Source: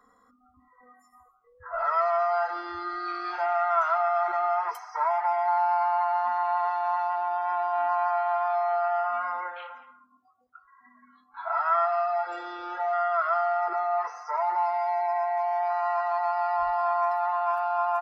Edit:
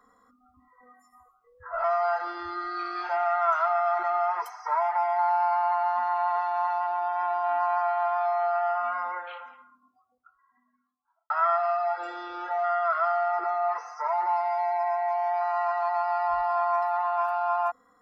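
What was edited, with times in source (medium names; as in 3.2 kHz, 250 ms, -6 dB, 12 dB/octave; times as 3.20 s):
1.84–2.13 s: delete
9.72–11.59 s: studio fade out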